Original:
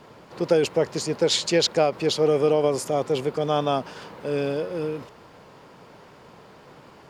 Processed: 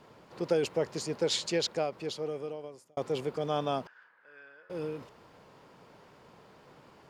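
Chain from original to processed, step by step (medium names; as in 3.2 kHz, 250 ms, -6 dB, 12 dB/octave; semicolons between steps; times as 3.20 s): 1.34–2.97 s: fade out; 3.87–4.70 s: band-pass filter 1.6 kHz, Q 6.7; trim -8 dB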